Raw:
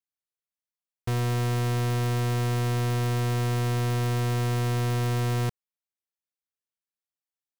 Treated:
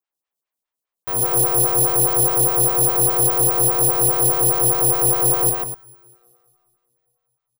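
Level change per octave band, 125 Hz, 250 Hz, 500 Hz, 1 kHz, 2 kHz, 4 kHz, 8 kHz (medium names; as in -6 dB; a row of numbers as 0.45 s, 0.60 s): -4.0 dB, +2.0 dB, +9.0 dB, +9.0 dB, +1.0 dB, +0.5 dB, +24.5 dB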